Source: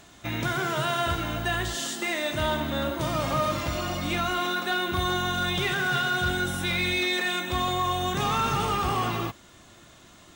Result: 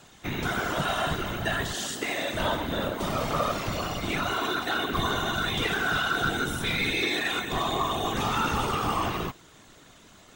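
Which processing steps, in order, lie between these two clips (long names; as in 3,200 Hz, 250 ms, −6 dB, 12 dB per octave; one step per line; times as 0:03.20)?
random phases in short frames
level −1 dB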